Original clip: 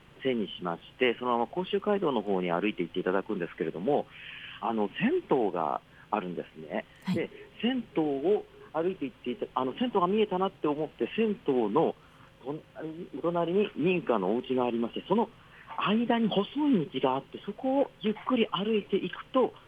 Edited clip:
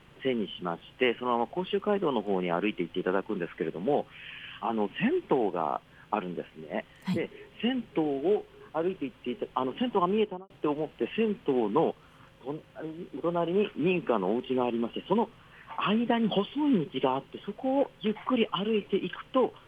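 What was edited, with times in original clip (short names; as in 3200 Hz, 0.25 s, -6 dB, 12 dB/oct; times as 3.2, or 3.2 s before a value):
10.16–10.5 studio fade out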